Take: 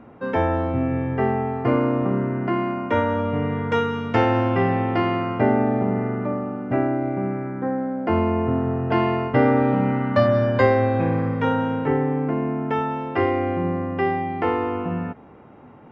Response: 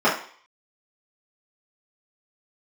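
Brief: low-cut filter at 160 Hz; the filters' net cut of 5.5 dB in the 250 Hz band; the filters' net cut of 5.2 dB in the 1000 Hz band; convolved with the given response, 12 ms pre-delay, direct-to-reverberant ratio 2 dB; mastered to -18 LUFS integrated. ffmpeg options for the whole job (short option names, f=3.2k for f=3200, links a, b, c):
-filter_complex "[0:a]highpass=160,equalizer=f=250:t=o:g=-5.5,equalizer=f=1k:t=o:g=-6.5,asplit=2[a][b];[1:a]atrim=start_sample=2205,adelay=12[c];[b][c]afir=irnorm=-1:irlink=0,volume=-22.5dB[d];[a][d]amix=inputs=2:normalize=0,volume=6dB"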